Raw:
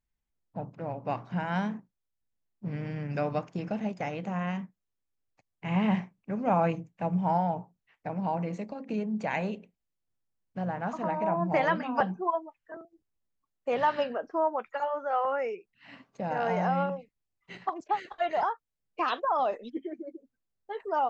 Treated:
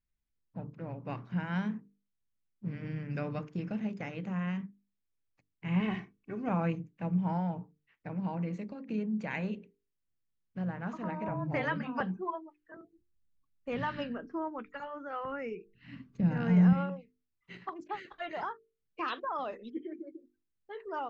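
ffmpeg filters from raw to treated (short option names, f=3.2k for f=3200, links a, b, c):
-filter_complex "[0:a]asettb=1/sr,asplit=3[a][b][c];[a]atrim=end=5.804[d];[b]atrim=start=5.8:end=6.49,asetpts=PTS-STARTPTS,afade=t=in:d=0.004:c=qsin,afade=t=out:st=0.686:d=0.004:c=qsin,aecho=1:1:2.7:0.65,atrim=end_sample=30429[e];[c]atrim=start=6.486[f];[d][e]acrossfade=d=0.004:c1=hsin:c2=qsin[g];[g][f]acrossfade=d=0.004:c1=qsin:c2=hsin,asettb=1/sr,asplit=3[h][i][j];[h]atrim=end=11.284[k];[i]atrim=start=11.28:end=11.87,asetpts=PTS-STARTPTS,afade=t=in:d=0.004:c=qsin,afade=t=out:st=0.586:d=0.004:c=qsin,afreqshift=-26[l];[j]atrim=start=11.866[m];[k][l]acrossfade=d=0.004:c1=hsin:c2=qsin[n];[n][m]acrossfade=d=0.004:c1=qsin:c2=hsin,asettb=1/sr,asplit=3[o][p][q];[o]atrim=end=12.594[r];[p]atrim=start=12.59:end=16.73,asetpts=PTS-STARTPTS,afade=t=in:d=0.004:c=qsin,afade=t=out:st=4.136:d=0.004:c=qsin,asubboost=boost=8:cutoff=230[s];[q]atrim=start=16.726[t];[r][s]acrossfade=d=0.004:c1=hsin:c2=qsin[u];[u][t]acrossfade=d=0.004:c1=qsin:c2=hsin,lowpass=f=2.5k:p=1,equalizer=f=730:t=o:w=1.1:g=-12,bandreject=f=50:t=h:w=6,bandreject=f=100:t=h:w=6,bandreject=f=150:t=h:w=6,bandreject=f=200:t=h:w=6,bandreject=f=250:t=h:w=6,bandreject=f=300:t=h:w=6,bandreject=f=350:t=h:w=6,bandreject=f=400:t=h:w=6,bandreject=f=450:t=h:w=6"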